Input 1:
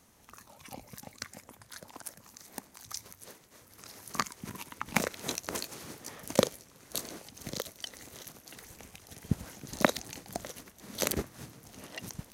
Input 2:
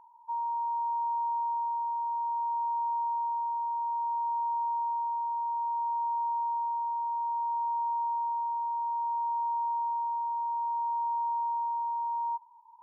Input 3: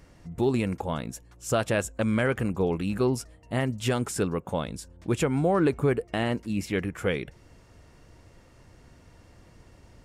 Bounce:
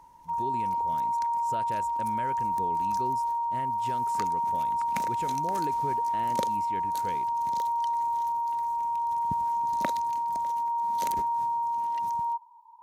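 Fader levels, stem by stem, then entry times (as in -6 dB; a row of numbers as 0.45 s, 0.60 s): -8.5 dB, +2.5 dB, -13.5 dB; 0.00 s, 0.00 s, 0.00 s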